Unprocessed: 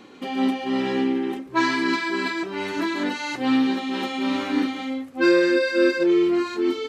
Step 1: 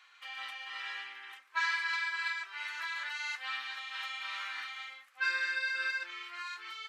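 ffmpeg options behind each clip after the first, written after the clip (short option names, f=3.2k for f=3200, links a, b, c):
-af "highpass=f=1.4k:w=0.5412,highpass=f=1.4k:w=1.3066,highshelf=f=2.2k:g=-11"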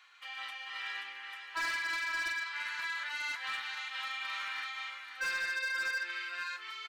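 -af "aecho=1:1:529:0.422,asoftclip=type=hard:threshold=-31dB"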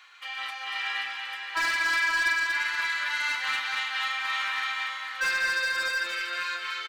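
-af "aecho=1:1:237|474|711|948|1185|1422:0.562|0.259|0.119|0.0547|0.0252|0.0116,volume=7.5dB"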